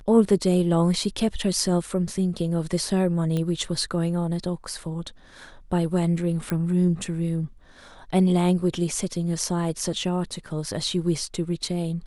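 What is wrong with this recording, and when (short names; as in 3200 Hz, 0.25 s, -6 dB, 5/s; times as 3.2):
3.37 pop -16 dBFS
6.5 pop -13 dBFS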